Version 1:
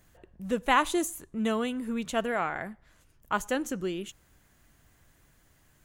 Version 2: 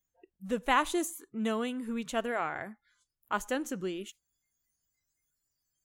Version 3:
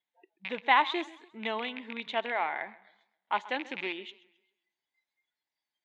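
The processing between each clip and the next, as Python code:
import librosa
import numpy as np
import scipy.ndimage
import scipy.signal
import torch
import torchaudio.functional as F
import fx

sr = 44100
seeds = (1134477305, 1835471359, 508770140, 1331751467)

y1 = fx.noise_reduce_blind(x, sr, reduce_db=26)
y1 = y1 * 10.0 ** (-3.0 / 20.0)
y2 = fx.rattle_buzz(y1, sr, strikes_db=-43.0, level_db=-29.0)
y2 = fx.cabinet(y2, sr, low_hz=370.0, low_slope=12, high_hz=3900.0, hz=(490.0, 880.0, 1300.0, 2100.0, 3700.0), db=(-4, 9, -6, 9, 10))
y2 = fx.echo_warbled(y2, sr, ms=133, feedback_pct=36, rate_hz=2.8, cents=150, wet_db=-19.0)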